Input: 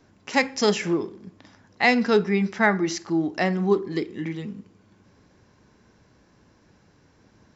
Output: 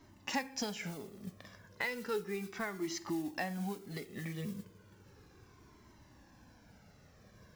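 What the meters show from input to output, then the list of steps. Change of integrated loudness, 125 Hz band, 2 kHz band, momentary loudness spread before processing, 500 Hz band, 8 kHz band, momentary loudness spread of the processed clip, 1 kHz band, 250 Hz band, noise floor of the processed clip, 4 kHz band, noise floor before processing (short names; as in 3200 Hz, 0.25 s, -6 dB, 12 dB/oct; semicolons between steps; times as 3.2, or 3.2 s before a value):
-16.0 dB, -13.0 dB, -15.5 dB, 11 LU, -17.5 dB, n/a, 12 LU, -16.0 dB, -16.0 dB, -62 dBFS, -12.5 dB, -60 dBFS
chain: compressor 8:1, threshold -32 dBFS, peak gain reduction 18 dB; modulation noise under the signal 19 dB; cascading flanger falling 0.34 Hz; gain +2 dB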